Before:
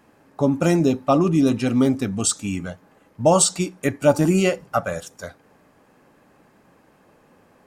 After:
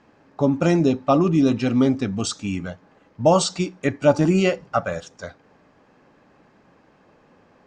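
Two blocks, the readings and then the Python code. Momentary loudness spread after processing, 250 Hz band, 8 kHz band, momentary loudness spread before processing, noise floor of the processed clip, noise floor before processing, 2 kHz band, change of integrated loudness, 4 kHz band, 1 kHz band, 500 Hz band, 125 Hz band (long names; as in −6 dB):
13 LU, 0.0 dB, −9.0 dB, 14 LU, −58 dBFS, −57 dBFS, 0.0 dB, −0.5 dB, −0.5 dB, 0.0 dB, 0.0 dB, 0.0 dB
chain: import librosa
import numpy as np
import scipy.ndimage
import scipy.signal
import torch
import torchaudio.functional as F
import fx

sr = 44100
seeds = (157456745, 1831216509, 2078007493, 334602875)

y = scipy.signal.sosfilt(scipy.signal.butter(4, 6100.0, 'lowpass', fs=sr, output='sos'), x)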